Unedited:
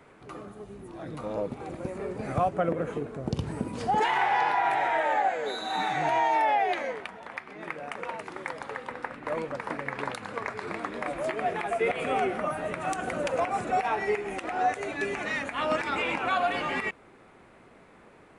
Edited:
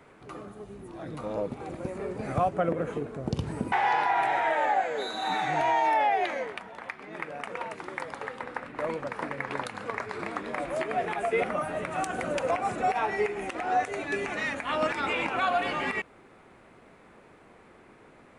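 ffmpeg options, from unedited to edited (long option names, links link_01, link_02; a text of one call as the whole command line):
ffmpeg -i in.wav -filter_complex "[0:a]asplit=3[link_01][link_02][link_03];[link_01]atrim=end=3.722[link_04];[link_02]atrim=start=4.198:end=11.922[link_05];[link_03]atrim=start=12.328[link_06];[link_04][link_05]acrossfade=duration=0.004:curve1=hsin:curve2=hsin[link_07];[link_07][link_06]acrossfade=duration=0.004:curve1=hsin:curve2=hsin" out.wav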